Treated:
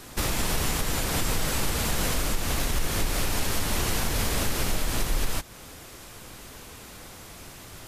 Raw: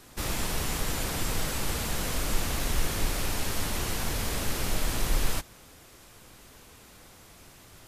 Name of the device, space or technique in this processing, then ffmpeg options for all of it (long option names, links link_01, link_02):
stacked limiters: -af "alimiter=limit=-19.5dB:level=0:latency=1:release=398,alimiter=limit=-23.5dB:level=0:latency=1:release=171,volume=8dB"